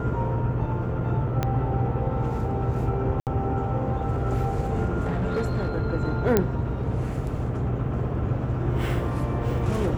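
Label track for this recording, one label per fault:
1.430000	1.430000	pop -11 dBFS
3.200000	3.270000	dropout 68 ms
5.030000	5.710000	clipped -21 dBFS
6.370000	6.370000	pop -6 dBFS

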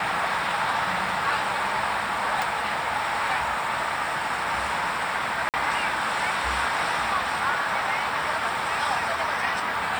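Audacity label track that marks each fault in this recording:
2.420000	2.420000	pop
5.490000	5.540000	dropout 48 ms

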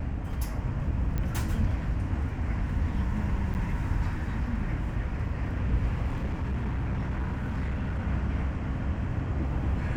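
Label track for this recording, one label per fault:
1.180000	1.180000	pop -19 dBFS
3.540000	3.550000	dropout 9.6 ms
6.060000	8.040000	clipped -26 dBFS

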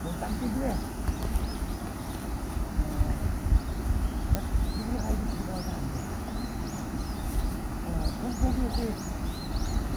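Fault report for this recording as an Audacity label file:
4.350000	4.350000	pop -12 dBFS

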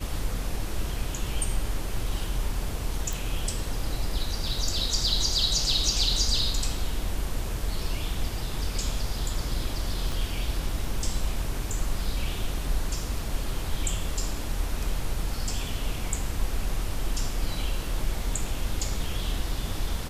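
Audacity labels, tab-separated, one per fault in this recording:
3.130000	3.130000	pop
10.120000	10.120000	pop

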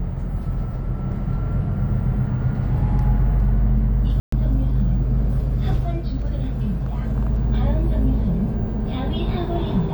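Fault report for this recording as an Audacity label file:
4.200000	4.320000	dropout 124 ms

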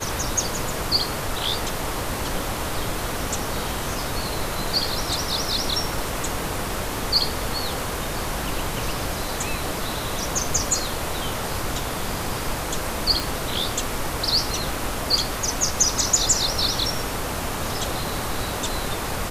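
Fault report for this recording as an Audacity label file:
13.200000	13.200000	pop

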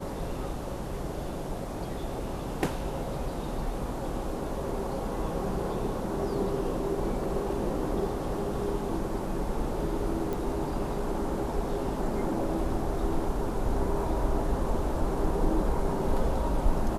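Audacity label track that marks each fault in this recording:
10.330000	10.330000	pop

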